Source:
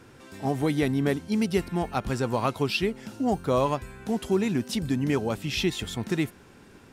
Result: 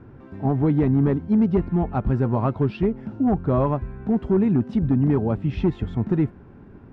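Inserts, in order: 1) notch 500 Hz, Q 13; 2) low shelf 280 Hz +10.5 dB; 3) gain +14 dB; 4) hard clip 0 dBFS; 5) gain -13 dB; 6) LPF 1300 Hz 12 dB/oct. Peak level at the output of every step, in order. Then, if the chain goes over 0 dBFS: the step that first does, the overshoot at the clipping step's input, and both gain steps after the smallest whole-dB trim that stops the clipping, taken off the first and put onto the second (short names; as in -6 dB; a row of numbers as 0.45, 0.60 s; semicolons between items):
-11.5, -7.0, +7.0, 0.0, -13.0, -12.5 dBFS; step 3, 7.0 dB; step 3 +7 dB, step 5 -6 dB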